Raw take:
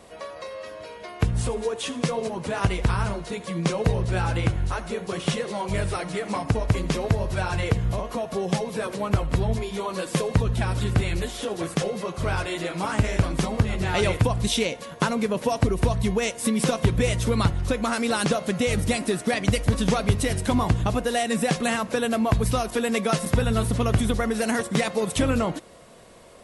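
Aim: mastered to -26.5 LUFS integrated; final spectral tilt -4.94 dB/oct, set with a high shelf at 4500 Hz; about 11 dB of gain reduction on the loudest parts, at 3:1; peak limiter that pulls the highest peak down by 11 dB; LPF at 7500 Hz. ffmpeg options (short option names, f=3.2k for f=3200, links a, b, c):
-af "lowpass=7.5k,highshelf=f=4.5k:g=5,acompressor=threshold=-31dB:ratio=3,volume=8.5dB,alimiter=limit=-16dB:level=0:latency=1"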